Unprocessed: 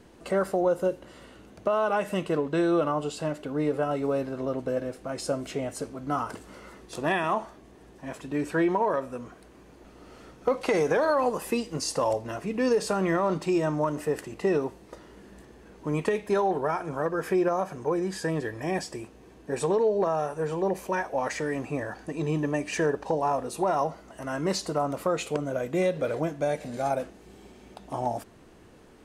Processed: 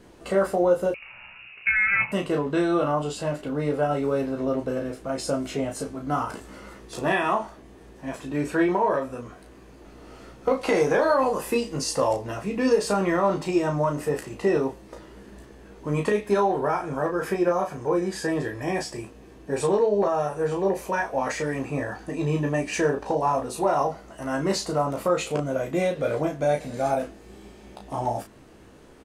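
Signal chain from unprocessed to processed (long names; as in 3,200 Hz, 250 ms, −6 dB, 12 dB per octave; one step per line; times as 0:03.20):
ambience of single reflections 15 ms −5.5 dB, 34 ms −5 dB
0:00.94–0:02.12: voice inversion scrambler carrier 2,800 Hz
level +1 dB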